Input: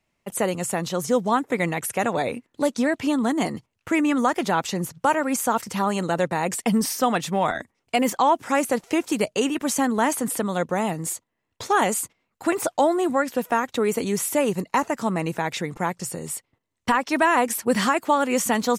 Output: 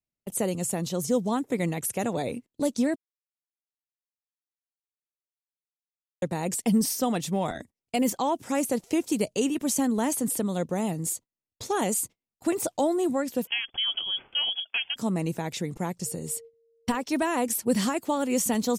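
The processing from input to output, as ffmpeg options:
-filter_complex "[0:a]asettb=1/sr,asplit=3[a][b][c];[a]atrim=end=13.474[d];[b]atrim=start=13.47:end=14.96,asetpts=PTS-STARTPTS,afade=t=in:d=0.004:c=qsin,afade=t=out:st=1.486:d=0.004:c=qsin,lowpass=f=3k:t=q:w=0.5098,lowpass=f=3k:t=q:w=0.6013,lowpass=f=3k:t=q:w=0.9,lowpass=f=3k:t=q:w=2.563,afreqshift=-3500[e];[c]atrim=start=14.956[f];[d][e]acrossfade=d=0.004:c1=hsin:c2=qsin[g];[g][f]acrossfade=d=0.004:c1=qsin:c2=hsin,asettb=1/sr,asplit=3[h][i][j];[h]atrim=end=16.064[k];[i]atrim=start=16.06:end=17.03,asetpts=PTS-STARTPTS,afade=t=in:d=0.004:c=qsin,afade=t=out:st=0.966:d=0.004:c=qsin,aeval=exprs='val(0)+0.00891*sin(2*PI*460*n/s)':c=same[l];[j]atrim=start=17.026[m];[k][l]acrossfade=d=0.004:c1=hsin:c2=qsin[n];[n][m]acrossfade=d=0.004:c1=qsin:c2=hsin,asplit=3[o][p][q];[o]atrim=end=2.96,asetpts=PTS-STARTPTS,afade=t=out:st=2.956:d=0.004:c=hsin[r];[p]atrim=start=2.96:end=6.22,asetpts=PTS-STARTPTS,volume=0[s];[q]atrim=start=6.22,asetpts=PTS-STARTPTS,afade=t=in:d=0.004:c=hsin[t];[r][s][t]concat=n=3:v=0:a=1,agate=range=-18dB:threshold=-40dB:ratio=16:detection=peak,equalizer=f=1.4k:w=0.57:g=-12.5"

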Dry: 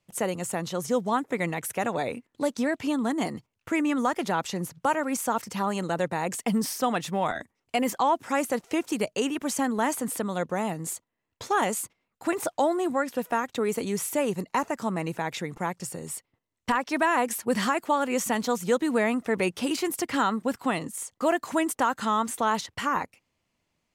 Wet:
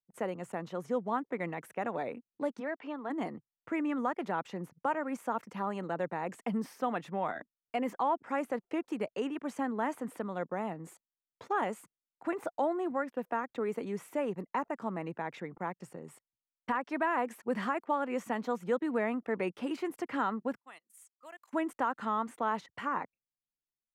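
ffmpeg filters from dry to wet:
-filter_complex "[0:a]asplit=3[a][b][c];[a]afade=t=out:st=2.59:d=0.02[d];[b]highpass=420,lowpass=4k,afade=t=in:st=2.59:d=0.02,afade=t=out:st=3.09:d=0.02[e];[c]afade=t=in:st=3.09:d=0.02[f];[d][e][f]amix=inputs=3:normalize=0,asettb=1/sr,asplit=3[g][h][i];[g]atrim=end=20.604[j];[h]atrim=start=20.6:end=21.53,asetpts=PTS-STARTPTS,afade=t=in:d=0.004:c=qsin,afade=t=out:st=0.926:d=0.004:c=qsin,aderivative[k];[i]atrim=start=21.526[l];[j][k]acrossfade=d=0.004:c1=hsin:c2=qsin[m];[m][l]acrossfade=d=0.004:c1=qsin:c2=hsin,anlmdn=0.0631,acrossover=split=150 2500:gain=0.224 1 0.141[n][o][p];[n][o][p]amix=inputs=3:normalize=0,volume=-6.5dB"

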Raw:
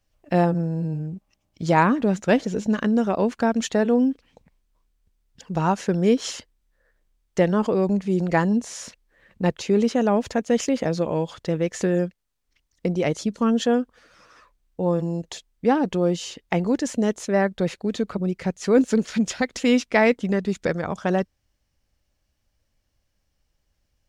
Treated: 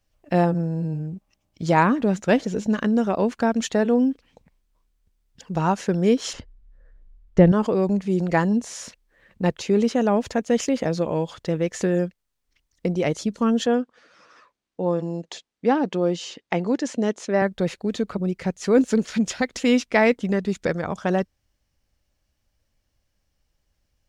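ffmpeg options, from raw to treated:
-filter_complex "[0:a]asettb=1/sr,asplit=3[a][b][c];[a]atrim=end=6.334[d];[b]atrim=start=6.33:end=7.52,asetpts=PTS-STARTPTS,afade=t=in:d=0.004:c=qsin,afade=t=out:st=1.186:d=0.004:c=qsin,aemphasis=mode=reproduction:type=riaa[e];[c]atrim=start=7.516[f];[d][e]acrossfade=d=0.004:c1=hsin:c2=qsin[g];[g][f]acrossfade=d=0.004:c1=qsin:c2=hsin,asettb=1/sr,asplit=3[h][i][j];[h]atrim=end=13.664[k];[i]atrim=start=13.66:end=17.42,asetpts=PTS-STARTPTS,afade=t=in:d=0.004:c=qsin,afade=t=out:st=3.756:d=0.004:c=qsin,highpass=180,lowpass=6.6k[l];[j]atrim=start=17.416[m];[k][l]acrossfade=d=0.004:c1=hsin:c2=qsin[n];[n][m]acrossfade=d=0.004:c1=qsin:c2=hsin"

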